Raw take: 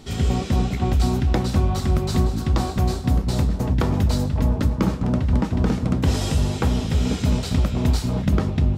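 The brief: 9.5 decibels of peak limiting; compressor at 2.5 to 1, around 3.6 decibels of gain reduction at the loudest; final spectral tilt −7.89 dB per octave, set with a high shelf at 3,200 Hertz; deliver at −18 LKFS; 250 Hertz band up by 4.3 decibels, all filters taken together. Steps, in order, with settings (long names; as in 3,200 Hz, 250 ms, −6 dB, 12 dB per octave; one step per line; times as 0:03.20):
parametric band 250 Hz +5.5 dB
high-shelf EQ 3,200 Hz −4 dB
downward compressor 2.5 to 1, threshold −18 dBFS
level +9 dB
brickwall limiter −9 dBFS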